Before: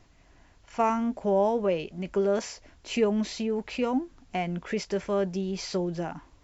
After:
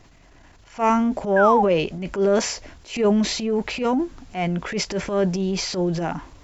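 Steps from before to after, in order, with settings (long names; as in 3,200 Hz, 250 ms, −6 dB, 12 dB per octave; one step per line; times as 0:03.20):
sound drawn into the spectrogram fall, 0:01.36–0:01.63, 760–1,700 Hz −27 dBFS
transient designer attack −11 dB, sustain +5 dB
level +7.5 dB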